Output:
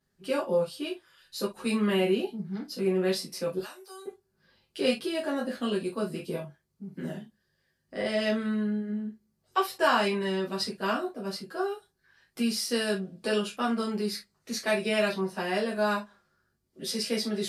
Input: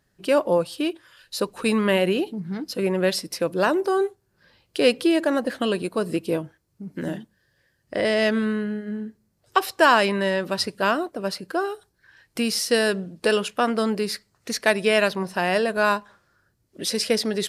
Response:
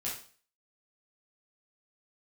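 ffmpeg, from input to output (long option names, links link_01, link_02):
-filter_complex "[0:a]asettb=1/sr,asplit=3[link_01][link_02][link_03];[link_01]atrim=end=3.584[link_04];[link_02]atrim=start=3.58:end=4.06,asetpts=PTS-STARTPTS,afade=type=in:duration=0.004:curve=qsin,afade=type=out:start_time=0.476:duration=0.004:curve=qsin,aderivative[link_05];[link_03]atrim=start=4.056[link_06];[link_04][link_05]acrossfade=duration=0.004:curve1=hsin:curve2=qsin[link_07];[link_07][link_06]acrossfade=duration=0.004:curve1=qsin:curve2=hsin[link_08];[1:a]atrim=start_sample=2205,atrim=end_sample=6174,asetrate=74970,aresample=44100[link_09];[link_08][link_09]afir=irnorm=-1:irlink=0,volume=-4.5dB"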